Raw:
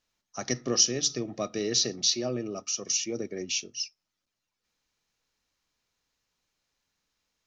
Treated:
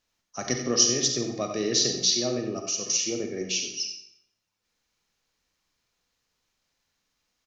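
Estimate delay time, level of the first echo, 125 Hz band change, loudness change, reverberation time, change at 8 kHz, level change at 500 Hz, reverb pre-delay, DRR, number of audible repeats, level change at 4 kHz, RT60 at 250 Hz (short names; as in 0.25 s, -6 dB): 90 ms, -10.5 dB, +2.5 dB, +3.0 dB, 0.70 s, n/a, +3.0 dB, 35 ms, 3.5 dB, 1, +3.0 dB, 0.80 s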